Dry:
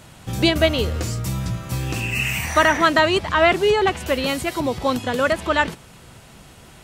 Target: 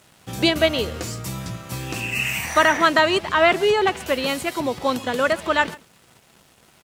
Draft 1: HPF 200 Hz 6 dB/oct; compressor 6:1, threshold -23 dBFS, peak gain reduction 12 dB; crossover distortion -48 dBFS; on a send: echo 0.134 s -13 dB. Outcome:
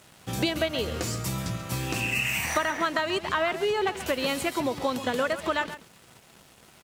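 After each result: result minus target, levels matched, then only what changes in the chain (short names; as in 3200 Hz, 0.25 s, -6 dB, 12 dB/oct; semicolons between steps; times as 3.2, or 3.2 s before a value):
compressor: peak gain reduction +12 dB; echo-to-direct +9 dB
remove: compressor 6:1, threshold -23 dBFS, peak gain reduction 12 dB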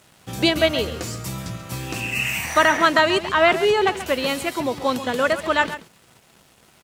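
echo-to-direct +9 dB
change: echo 0.134 s -22 dB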